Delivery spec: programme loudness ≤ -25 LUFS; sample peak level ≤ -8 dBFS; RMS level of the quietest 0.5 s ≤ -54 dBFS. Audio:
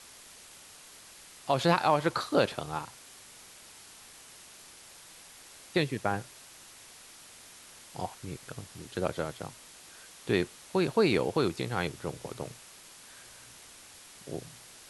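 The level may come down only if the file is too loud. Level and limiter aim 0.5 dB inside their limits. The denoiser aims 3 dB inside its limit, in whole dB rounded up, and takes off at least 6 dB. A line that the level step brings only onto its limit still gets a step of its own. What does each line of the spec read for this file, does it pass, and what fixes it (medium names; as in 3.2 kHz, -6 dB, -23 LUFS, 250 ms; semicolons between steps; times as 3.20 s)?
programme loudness -31.0 LUFS: pass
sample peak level -10.5 dBFS: pass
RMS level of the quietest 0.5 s -52 dBFS: fail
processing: noise reduction 6 dB, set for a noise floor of -52 dBFS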